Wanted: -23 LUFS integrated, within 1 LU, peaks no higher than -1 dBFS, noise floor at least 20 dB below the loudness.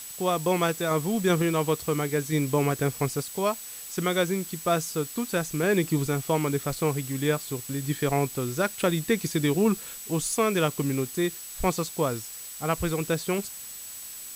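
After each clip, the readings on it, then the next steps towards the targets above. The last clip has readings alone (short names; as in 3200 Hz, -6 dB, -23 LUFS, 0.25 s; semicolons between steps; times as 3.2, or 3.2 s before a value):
steady tone 7900 Hz; tone level -42 dBFS; noise floor -40 dBFS; noise floor target -47 dBFS; loudness -27.0 LUFS; peak -10.5 dBFS; loudness target -23.0 LUFS
-> notch 7900 Hz, Q 30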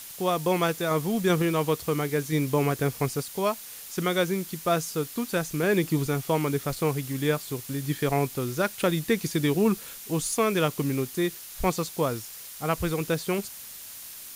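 steady tone none; noise floor -42 dBFS; noise floor target -47 dBFS
-> denoiser 6 dB, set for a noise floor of -42 dBFS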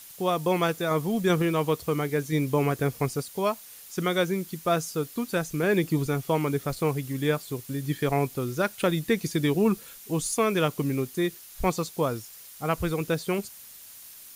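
noise floor -47 dBFS; noise floor target -48 dBFS
-> denoiser 6 dB, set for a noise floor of -47 dBFS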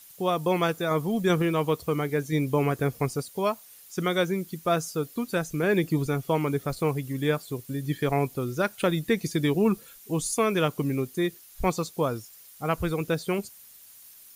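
noise floor -51 dBFS; loudness -27.5 LUFS; peak -10.5 dBFS; loudness target -23.0 LUFS
-> gain +4.5 dB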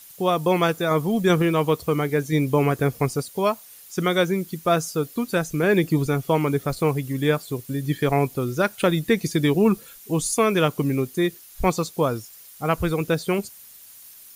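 loudness -23.0 LUFS; peak -6.0 dBFS; noise floor -46 dBFS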